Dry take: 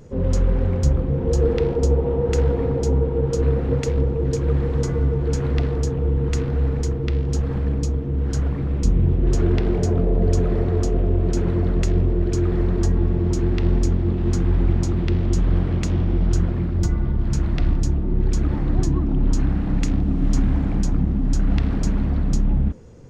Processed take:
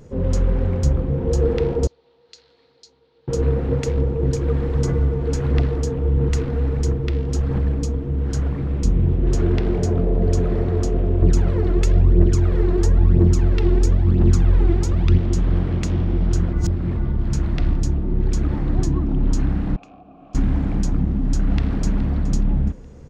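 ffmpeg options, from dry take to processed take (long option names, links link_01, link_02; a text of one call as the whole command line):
ffmpeg -i in.wav -filter_complex "[0:a]asettb=1/sr,asplit=3[link_01][link_02][link_03];[link_01]atrim=end=1.874[link_04];[link_02]atrim=start=1.87:end=3.28,asetpts=PTS-STARTPTS,afade=type=in:duration=0.004:curve=qsin,afade=type=out:start_time=1.406:duration=0.004:curve=qsin,bandpass=frequency=4300:width_type=q:width=6.1[link_05];[link_03]atrim=start=3.276[link_06];[link_04][link_05]acrossfade=duration=0.004:curve1=hsin:curve2=qsin[link_07];[link_07][link_06]acrossfade=duration=0.004:curve1=qsin:curve2=hsin,asettb=1/sr,asplit=3[link_08][link_09][link_10];[link_08]atrim=end=4.234[link_11];[link_09]atrim=start=4.23:end=8.13,asetpts=PTS-STARTPTS,afade=type=in:duration=0.004:curve=qsin,afade=type=out:start_time=3.896:duration=0.004:curve=qsin,aphaser=in_gain=1:out_gain=1:delay=4.4:decay=0.28:speed=1.5:type=sinusoidal[link_12];[link_10]atrim=start=8.126[link_13];[link_11][link_12]acrossfade=duration=0.004:curve1=hsin:curve2=qsin[link_14];[link_14][link_13]acrossfade=duration=0.004:curve1=qsin:curve2=hsin,asettb=1/sr,asplit=3[link_15][link_16][link_17];[link_15]atrim=end=11.224[link_18];[link_16]atrim=start=11.22:end=15.18,asetpts=PTS-STARTPTS,afade=type=in:duration=0.004:curve=qsin,afade=type=out:start_time=3.956:duration=0.004:curve=qsin,aphaser=in_gain=1:out_gain=1:delay=3:decay=0.57:speed=1:type=triangular[link_19];[link_17]atrim=start=15.176[link_20];[link_18][link_19]acrossfade=duration=0.004:curve1=hsin:curve2=qsin[link_21];[link_21][link_20]acrossfade=duration=0.004:curve1=qsin:curve2=hsin,asettb=1/sr,asplit=3[link_22][link_23][link_24];[link_22]atrim=end=19.764[link_25];[link_23]atrim=start=19.76:end=20.35,asetpts=PTS-STARTPTS,afade=type=in:duration=0.004:curve=qsin,afade=type=out:start_time=0.586:duration=0.004:curve=qsin,asplit=3[link_26][link_27][link_28];[link_26]bandpass=frequency=730:width_type=q:width=8,volume=0dB[link_29];[link_27]bandpass=frequency=1090:width_type=q:width=8,volume=-6dB[link_30];[link_28]bandpass=frequency=2440:width_type=q:width=8,volume=-9dB[link_31];[link_29][link_30][link_31]amix=inputs=3:normalize=0[link_32];[link_24]atrim=start=20.346[link_33];[link_25][link_32]acrossfade=duration=0.004:curve1=hsin:curve2=qsin[link_34];[link_34][link_33]acrossfade=duration=0.004:curve1=qsin:curve2=hsin,asplit=2[link_35][link_36];[link_36]afade=type=in:start_time=21.42:duration=0.01,afade=type=out:start_time=22.24:duration=0.01,aecho=0:1:420|840|1260|1680:0.158489|0.0633957|0.0253583|0.0101433[link_37];[link_35][link_37]amix=inputs=2:normalize=0,asplit=3[link_38][link_39][link_40];[link_38]atrim=end=16.532[link_41];[link_39]atrim=start=16.528:end=16.972,asetpts=PTS-STARTPTS,areverse[link_42];[link_40]atrim=start=16.968[link_43];[link_41][link_42]acrossfade=duration=0.004:curve1=hsin:curve2=hsin[link_44];[link_44][link_43]acrossfade=duration=0.004:curve1=hsin:curve2=hsin" out.wav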